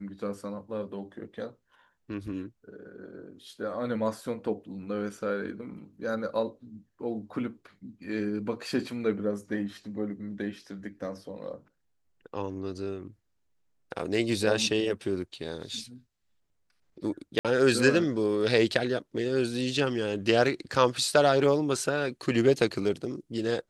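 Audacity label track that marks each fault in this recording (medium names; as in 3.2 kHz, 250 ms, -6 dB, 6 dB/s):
17.390000	17.450000	dropout 57 ms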